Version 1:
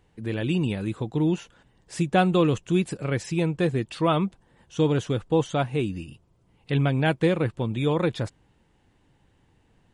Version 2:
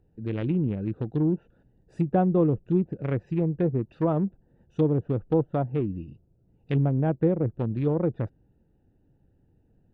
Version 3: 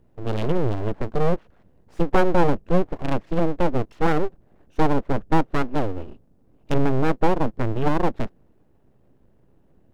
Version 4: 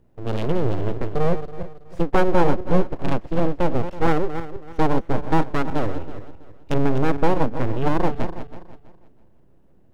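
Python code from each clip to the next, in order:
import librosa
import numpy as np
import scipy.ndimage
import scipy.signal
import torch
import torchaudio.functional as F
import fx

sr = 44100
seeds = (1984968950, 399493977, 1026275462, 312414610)

y1 = fx.wiener(x, sr, points=41)
y1 = fx.env_lowpass_down(y1, sr, base_hz=690.0, full_db=-20.0)
y2 = np.abs(y1)
y2 = y2 * librosa.db_to_amplitude(7.0)
y3 = fx.reverse_delay_fb(y2, sr, ms=163, feedback_pct=51, wet_db=-10.0)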